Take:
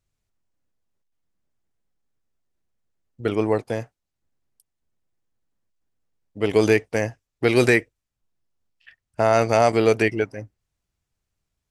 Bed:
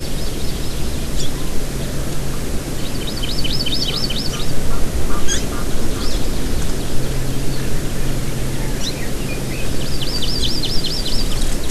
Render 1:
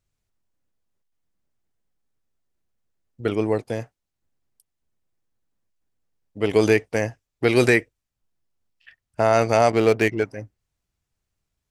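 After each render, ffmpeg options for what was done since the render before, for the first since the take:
ffmpeg -i in.wav -filter_complex "[0:a]asettb=1/sr,asplit=3[link_01][link_02][link_03];[link_01]atrim=end=3.334[link_04];[link_02]atrim=start=3.33:end=3.79,asetpts=PTS-STARTPTS,afade=type=in:duration=0.004:curve=qsin,afade=type=out:start_time=0.456:duration=0.004:curve=qsin,equalizer=frequency=1100:width=0.81:gain=-4[link_05];[link_03]atrim=start=3.786[link_06];[link_04][link_05]acrossfade=duration=0.004:curve1=hsin:curve2=qsin[link_07];[link_07][link_06]acrossfade=duration=0.004:curve1=qsin:curve2=hsin,asettb=1/sr,asplit=3[link_08][link_09][link_10];[link_08]atrim=end=9.704[link_11];[link_09]atrim=start=9.7:end=10.24,asetpts=PTS-STARTPTS,afade=type=in:duration=0.004:curve=qsin,afade=type=out:start_time=0.536:duration=0.004:curve=qsin,adynamicsmooth=sensitivity=4.5:basefreq=1800[link_12];[link_10]atrim=start=10.236[link_13];[link_11][link_12]acrossfade=duration=0.004:curve1=hsin:curve2=qsin[link_14];[link_14][link_13]acrossfade=duration=0.004:curve1=qsin:curve2=hsin" out.wav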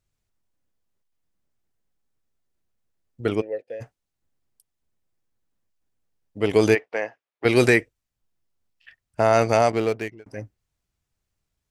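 ffmpeg -i in.wav -filter_complex "[0:a]asplit=3[link_01][link_02][link_03];[link_01]afade=type=out:start_time=3.4:duration=0.02[link_04];[link_02]asplit=3[link_05][link_06][link_07];[link_05]bandpass=frequency=530:width_type=q:width=8,volume=0dB[link_08];[link_06]bandpass=frequency=1840:width_type=q:width=8,volume=-6dB[link_09];[link_07]bandpass=frequency=2480:width_type=q:width=8,volume=-9dB[link_10];[link_08][link_09][link_10]amix=inputs=3:normalize=0,afade=type=in:start_time=3.4:duration=0.02,afade=type=out:start_time=3.8:duration=0.02[link_11];[link_03]afade=type=in:start_time=3.8:duration=0.02[link_12];[link_04][link_11][link_12]amix=inputs=3:normalize=0,asplit=3[link_13][link_14][link_15];[link_13]afade=type=out:start_time=6.74:duration=0.02[link_16];[link_14]highpass=520,lowpass=2700,afade=type=in:start_time=6.74:duration=0.02,afade=type=out:start_time=7.44:duration=0.02[link_17];[link_15]afade=type=in:start_time=7.44:duration=0.02[link_18];[link_16][link_17][link_18]amix=inputs=3:normalize=0,asplit=2[link_19][link_20];[link_19]atrim=end=10.26,asetpts=PTS-STARTPTS,afade=type=out:start_time=9.51:duration=0.75[link_21];[link_20]atrim=start=10.26,asetpts=PTS-STARTPTS,afade=type=in:duration=0.004:curve=hsin[link_22];[link_21][link_22]concat=n=2:v=0:a=1" out.wav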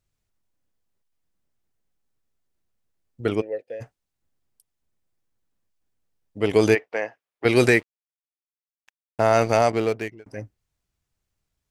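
ffmpeg -i in.wav -filter_complex "[0:a]asettb=1/sr,asplit=3[link_01][link_02][link_03];[link_01]atrim=end=7.694[link_04];[link_02]atrim=start=7.69:end=9.66,asetpts=PTS-STARTPTS,afade=type=in:duration=0.004:curve=qsin,afade=type=out:start_time=1.966:duration=0.004:curve=qsin,aeval=exprs='sgn(val(0))*max(abs(val(0))-0.00944,0)':channel_layout=same[link_05];[link_03]atrim=start=9.656[link_06];[link_04][link_05]acrossfade=duration=0.004:curve1=hsin:curve2=qsin[link_07];[link_07][link_06]acrossfade=duration=0.004:curve1=qsin:curve2=hsin" out.wav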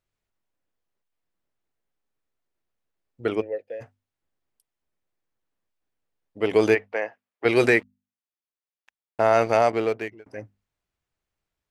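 ffmpeg -i in.wav -af "bass=frequency=250:gain=-7,treble=frequency=4000:gain=-8,bandreject=frequency=50:width_type=h:width=6,bandreject=frequency=100:width_type=h:width=6,bandreject=frequency=150:width_type=h:width=6,bandreject=frequency=200:width_type=h:width=6,bandreject=frequency=250:width_type=h:width=6" out.wav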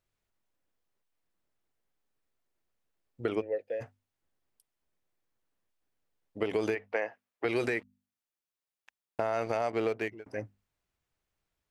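ffmpeg -i in.wav -af "alimiter=limit=-15dB:level=0:latency=1:release=237,acompressor=threshold=-26dB:ratio=5" out.wav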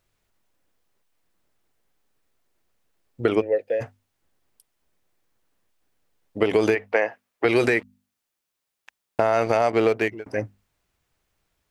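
ffmpeg -i in.wav -af "volume=10.5dB" out.wav

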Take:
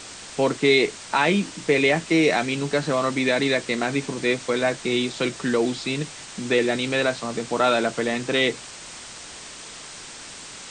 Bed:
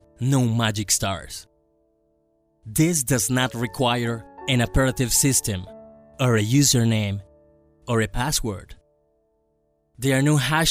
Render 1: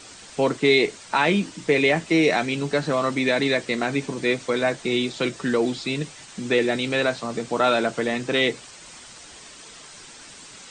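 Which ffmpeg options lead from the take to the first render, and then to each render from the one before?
ffmpeg -i in.wav -af "afftdn=noise_reduction=7:noise_floor=-40" out.wav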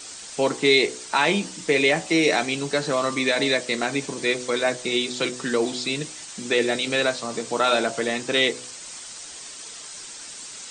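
ffmpeg -i in.wav -af "bass=frequency=250:gain=-5,treble=frequency=4000:gain=8,bandreject=frequency=62.25:width_type=h:width=4,bandreject=frequency=124.5:width_type=h:width=4,bandreject=frequency=186.75:width_type=h:width=4,bandreject=frequency=249:width_type=h:width=4,bandreject=frequency=311.25:width_type=h:width=4,bandreject=frequency=373.5:width_type=h:width=4,bandreject=frequency=435.75:width_type=h:width=4,bandreject=frequency=498:width_type=h:width=4,bandreject=frequency=560.25:width_type=h:width=4,bandreject=frequency=622.5:width_type=h:width=4,bandreject=frequency=684.75:width_type=h:width=4,bandreject=frequency=747:width_type=h:width=4,bandreject=frequency=809.25:width_type=h:width=4,bandreject=frequency=871.5:width_type=h:width=4,bandreject=frequency=933.75:width_type=h:width=4,bandreject=frequency=996:width_type=h:width=4,bandreject=frequency=1058.25:width_type=h:width=4,bandreject=frequency=1120.5:width_type=h:width=4,bandreject=frequency=1182.75:width_type=h:width=4" out.wav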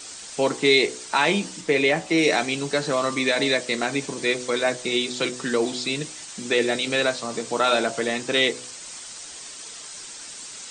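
ffmpeg -i in.wav -filter_complex "[0:a]asettb=1/sr,asplit=3[link_01][link_02][link_03];[link_01]atrim=end=1.614[link_04];[link_02]atrim=start=1.61:end=2.18,asetpts=PTS-STARTPTS,afade=type=in:duration=0.004:curve=qsin,afade=type=out:start_time=0.566:duration=0.004:curve=qsin,highshelf=frequency=4000:gain=-6[link_05];[link_03]atrim=start=2.176[link_06];[link_04][link_05]acrossfade=duration=0.004:curve1=hsin:curve2=qsin[link_07];[link_07][link_06]acrossfade=duration=0.004:curve1=qsin:curve2=hsin" out.wav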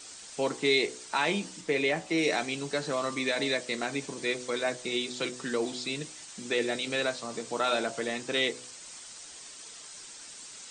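ffmpeg -i in.wav -af "volume=-7.5dB" out.wav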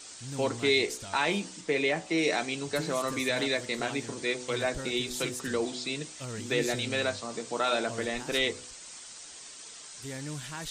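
ffmpeg -i in.wav -i bed.wav -filter_complex "[1:a]volume=-20dB[link_01];[0:a][link_01]amix=inputs=2:normalize=0" out.wav

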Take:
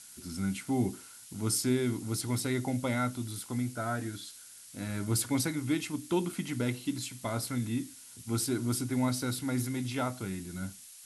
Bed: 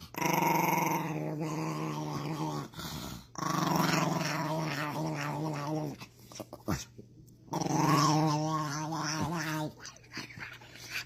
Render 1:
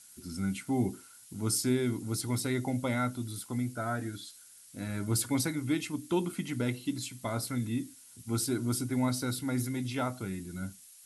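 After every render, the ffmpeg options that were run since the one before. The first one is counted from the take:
ffmpeg -i in.wav -af "afftdn=noise_reduction=6:noise_floor=-51" out.wav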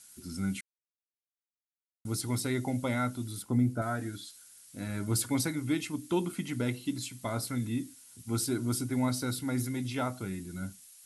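ffmpeg -i in.wav -filter_complex "[0:a]asettb=1/sr,asplit=3[link_01][link_02][link_03];[link_01]atrim=end=3.424[link_04];[link_02]atrim=start=3.42:end=3.82,asetpts=PTS-STARTPTS,afade=type=in:duration=0.004:curve=qsin,afade=type=out:start_time=0.396:duration=0.004:curve=qsin,tiltshelf=frequency=1100:gain=7[link_05];[link_03]atrim=start=3.816[link_06];[link_04][link_05]acrossfade=duration=0.004:curve1=hsin:curve2=qsin[link_07];[link_07][link_06]acrossfade=duration=0.004:curve1=qsin:curve2=hsin,asplit=3[link_08][link_09][link_10];[link_08]atrim=end=0.61,asetpts=PTS-STARTPTS,afade=type=out:start_time=0.606:duration=0.004:curve=hsin[link_11];[link_09]atrim=start=0.61:end=2.05,asetpts=PTS-STARTPTS,volume=0[link_12];[link_10]atrim=start=2.05,asetpts=PTS-STARTPTS,afade=type=in:duration=0.004:curve=hsin[link_13];[link_11][link_12][link_13]concat=n=3:v=0:a=1" out.wav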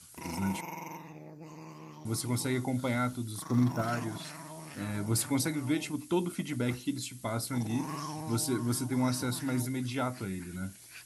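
ffmpeg -i in.wav -i bed.wav -filter_complex "[1:a]volume=-12.5dB[link_01];[0:a][link_01]amix=inputs=2:normalize=0" out.wav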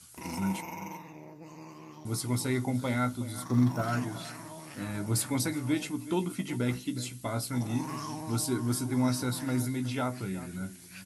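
ffmpeg -i in.wav -filter_complex "[0:a]asplit=2[link_01][link_02];[link_02]adelay=16,volume=-10.5dB[link_03];[link_01][link_03]amix=inputs=2:normalize=0,asplit=2[link_04][link_05];[link_05]adelay=367.3,volume=-15dB,highshelf=frequency=4000:gain=-8.27[link_06];[link_04][link_06]amix=inputs=2:normalize=0" out.wav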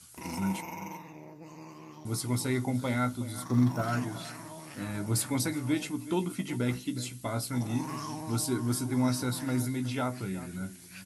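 ffmpeg -i in.wav -af anull out.wav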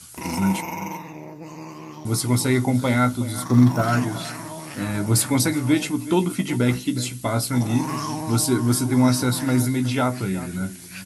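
ffmpeg -i in.wav -af "volume=10dB" out.wav

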